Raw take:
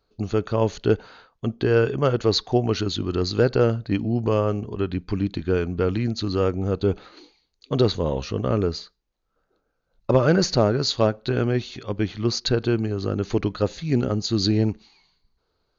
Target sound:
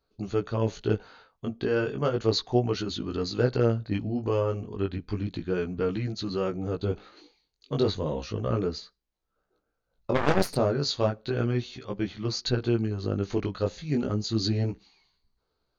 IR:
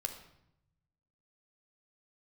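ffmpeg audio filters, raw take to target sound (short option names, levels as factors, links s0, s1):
-filter_complex "[0:a]flanger=delay=15:depth=6.2:speed=0.33,asplit=3[s0][s1][s2];[s0]afade=t=out:st=10.14:d=0.02[s3];[s1]aeval=exprs='0.447*(cos(1*acos(clip(val(0)/0.447,-1,1)))-cos(1*PI/2))+0.0891*(cos(4*acos(clip(val(0)/0.447,-1,1)))-cos(4*PI/2))+0.0794*(cos(6*acos(clip(val(0)/0.447,-1,1)))-cos(6*PI/2))+0.0891*(cos(7*acos(clip(val(0)/0.447,-1,1)))-cos(7*PI/2))+0.0794*(cos(8*acos(clip(val(0)/0.447,-1,1)))-cos(8*PI/2))':c=same,afade=t=in:st=10.14:d=0.02,afade=t=out:st=10.55:d=0.02[s4];[s2]afade=t=in:st=10.55:d=0.02[s5];[s3][s4][s5]amix=inputs=3:normalize=0,volume=0.75"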